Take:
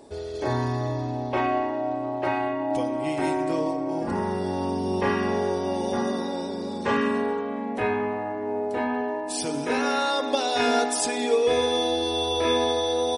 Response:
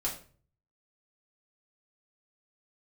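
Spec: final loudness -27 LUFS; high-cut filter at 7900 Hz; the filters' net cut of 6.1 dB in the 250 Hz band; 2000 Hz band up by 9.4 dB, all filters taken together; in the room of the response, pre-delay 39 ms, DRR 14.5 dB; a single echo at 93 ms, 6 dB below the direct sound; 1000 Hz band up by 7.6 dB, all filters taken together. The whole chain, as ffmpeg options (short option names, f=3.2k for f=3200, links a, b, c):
-filter_complex "[0:a]lowpass=7.9k,equalizer=f=250:t=o:g=-8.5,equalizer=f=1k:t=o:g=8.5,equalizer=f=2k:t=o:g=9,aecho=1:1:93:0.501,asplit=2[a][b];[1:a]atrim=start_sample=2205,adelay=39[c];[b][c]afir=irnorm=-1:irlink=0,volume=-18.5dB[d];[a][d]amix=inputs=2:normalize=0,volume=-6dB"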